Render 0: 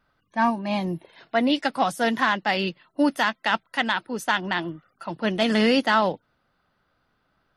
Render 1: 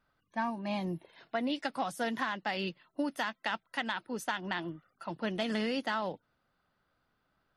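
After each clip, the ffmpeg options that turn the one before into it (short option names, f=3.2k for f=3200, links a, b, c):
-af "acompressor=threshold=-22dB:ratio=6,volume=-7dB"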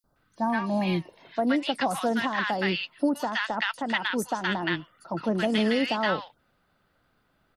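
-filter_complex "[0:a]acrossover=split=1100|5400[a][b][c];[a]adelay=40[d];[b]adelay=160[e];[d][e][c]amix=inputs=3:normalize=0,volume=9dB"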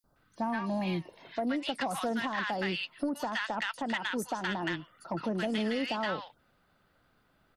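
-af "acompressor=threshold=-30dB:ratio=2.5,asoftclip=type=tanh:threshold=-21.5dB"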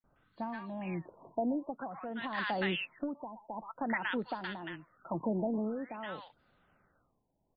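-af "tremolo=f=0.75:d=0.67,afftfilt=real='re*lt(b*sr/1024,990*pow(5000/990,0.5+0.5*sin(2*PI*0.51*pts/sr)))':imag='im*lt(b*sr/1024,990*pow(5000/990,0.5+0.5*sin(2*PI*0.51*pts/sr)))':win_size=1024:overlap=0.75"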